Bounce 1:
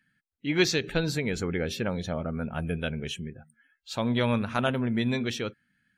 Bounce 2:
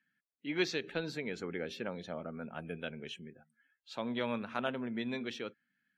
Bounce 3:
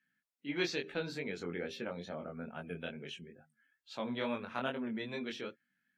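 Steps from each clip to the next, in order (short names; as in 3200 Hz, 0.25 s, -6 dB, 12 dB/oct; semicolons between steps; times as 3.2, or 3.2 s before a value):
three-band isolator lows -19 dB, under 180 Hz, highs -12 dB, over 4900 Hz; gain -8 dB
chorus 2.3 Hz, delay 20 ms, depth 3.8 ms; gain +2 dB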